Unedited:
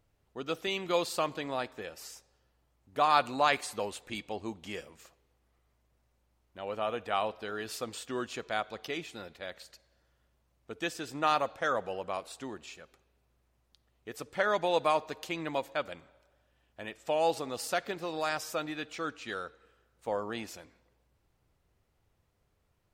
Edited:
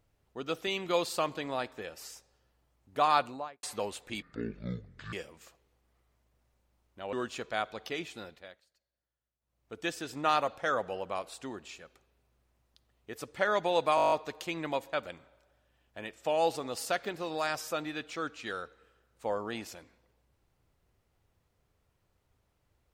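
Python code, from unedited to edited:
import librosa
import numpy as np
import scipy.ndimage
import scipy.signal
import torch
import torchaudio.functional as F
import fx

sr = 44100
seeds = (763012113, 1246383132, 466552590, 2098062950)

y = fx.studio_fade_out(x, sr, start_s=3.06, length_s=0.57)
y = fx.edit(y, sr, fx.speed_span(start_s=4.22, length_s=0.49, speed=0.54),
    fx.cut(start_s=6.71, length_s=1.4),
    fx.fade_down_up(start_s=9.18, length_s=1.61, db=-21.0, fade_s=0.41),
    fx.stutter(start_s=14.94, slice_s=0.02, count=9), tone=tone)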